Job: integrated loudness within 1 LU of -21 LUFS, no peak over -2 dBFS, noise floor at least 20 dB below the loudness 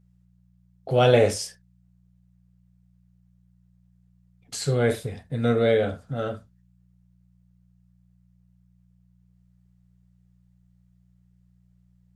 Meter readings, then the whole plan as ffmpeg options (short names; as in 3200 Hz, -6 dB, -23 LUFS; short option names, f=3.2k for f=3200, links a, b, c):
hum 60 Hz; harmonics up to 180 Hz; hum level -59 dBFS; loudness -24.0 LUFS; peak -6.0 dBFS; loudness target -21.0 LUFS
-> -af "bandreject=f=60:t=h:w=4,bandreject=f=120:t=h:w=4,bandreject=f=180:t=h:w=4"
-af "volume=3dB"